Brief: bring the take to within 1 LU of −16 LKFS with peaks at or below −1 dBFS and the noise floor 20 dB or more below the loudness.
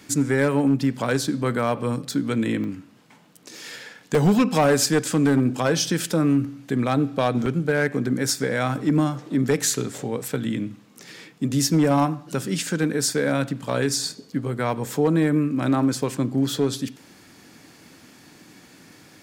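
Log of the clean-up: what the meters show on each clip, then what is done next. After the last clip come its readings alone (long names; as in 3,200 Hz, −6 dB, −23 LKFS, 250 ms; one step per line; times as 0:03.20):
share of clipped samples 0.6%; peaks flattened at −12.5 dBFS; number of dropouts 6; longest dropout 2.0 ms; integrated loudness −22.5 LKFS; sample peak −12.5 dBFS; target loudness −16.0 LKFS
→ clipped peaks rebuilt −12.5 dBFS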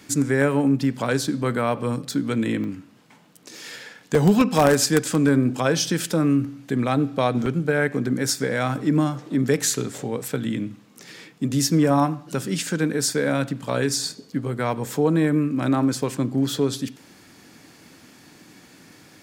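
share of clipped samples 0.0%; number of dropouts 6; longest dropout 2.0 ms
→ repair the gap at 0:02.64/0:04.15/0:07.46/0:08.36/0:09.98/0:16.03, 2 ms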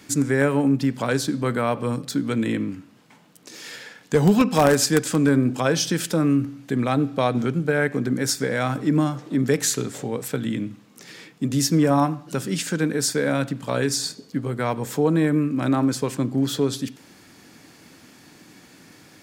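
number of dropouts 0; integrated loudness −22.5 LKFS; sample peak −3.5 dBFS; target loudness −16.0 LKFS
→ level +6.5 dB
brickwall limiter −1 dBFS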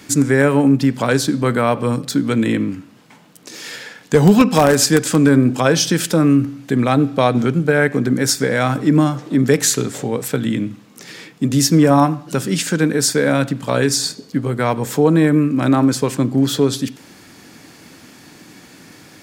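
integrated loudness −16.0 LKFS; sample peak −1.0 dBFS; background noise floor −45 dBFS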